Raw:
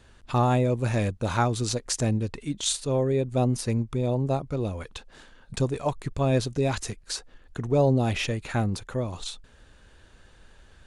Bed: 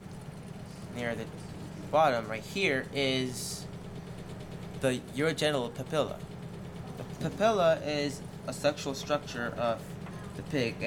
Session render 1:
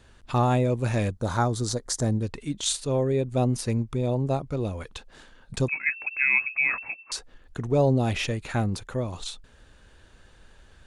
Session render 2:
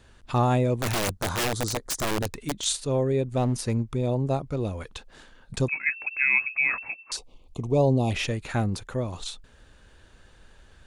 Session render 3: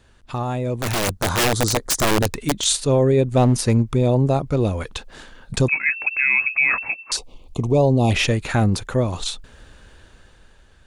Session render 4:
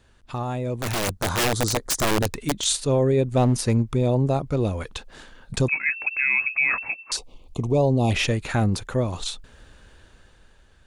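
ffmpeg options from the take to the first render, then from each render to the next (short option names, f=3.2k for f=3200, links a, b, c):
-filter_complex "[0:a]asettb=1/sr,asplit=3[a][b][c];[a]atrim=end=1.144[d];[b]atrim=start=1.14:end=2.23,asetpts=PTS-STARTPTS,afade=t=in:d=0.004:c=qsin,afade=t=out:st=1.086:d=0.004:c=qsin,equalizer=f=2.6k:t=o:w=0.48:g=-15[e];[c]atrim=start=2.226[f];[d][e]acrossfade=d=0.004:c1=hsin:c2=qsin[g];[g][f]acrossfade=d=0.004:c1=qsin:c2=hsin,asettb=1/sr,asplit=3[h][i][j];[h]atrim=end=5.684[k];[i]atrim=start=5.68:end=7.12,asetpts=PTS-STARTPTS,afade=t=in:d=0.004:c=qsin,afade=t=out:st=1.436:d=0.004:c=qsin,lowpass=f=2.3k:t=q:w=0.5098,lowpass=f=2.3k:t=q:w=0.6013,lowpass=f=2.3k:t=q:w=0.9,lowpass=f=2.3k:t=q:w=2.563,afreqshift=-2700[l];[j]atrim=start=7.116[m];[k][l]acrossfade=d=0.004:c1=hsin:c2=qsin[n];[n][m]acrossfade=d=0.004:c1=qsin:c2=hsin"
-filter_complex "[0:a]asplit=3[a][b][c];[a]afade=t=out:st=0.76:d=0.02[d];[b]aeval=exprs='(mod(10.6*val(0)+1,2)-1)/10.6':c=same,afade=t=in:st=0.76:d=0.02,afade=t=out:st=2.62:d=0.02[e];[c]afade=t=in:st=2.62:d=0.02[f];[d][e][f]amix=inputs=3:normalize=0,asettb=1/sr,asplit=3[g][h][i];[g]atrim=end=3.284[j];[h]atrim=start=3.28:end=3.95,asetpts=PTS-STARTPTS,afade=t=in:d=0.004:c=qsin,afade=t=out:st=0.666:d=0.004:c=qsin,asoftclip=type=hard:threshold=-18dB[k];[i]atrim=start=3.946[l];[j][k]acrossfade=d=0.004:c1=hsin:c2=qsin[m];[m][l]acrossfade=d=0.004:c1=qsin:c2=hsin,asplit=3[n][o][p];[n]afade=t=out:st=7.16:d=0.02[q];[o]asuperstop=centerf=1600:order=8:qfactor=1.5,afade=t=in:st=7.16:d=0.02,afade=t=out:st=8.1:d=0.02[r];[p]afade=t=in:st=8.1:d=0.02[s];[q][r][s]amix=inputs=3:normalize=0"
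-af "alimiter=limit=-17.5dB:level=0:latency=1:release=13,dynaudnorm=f=200:g=11:m=9dB"
-af "volume=-3.5dB"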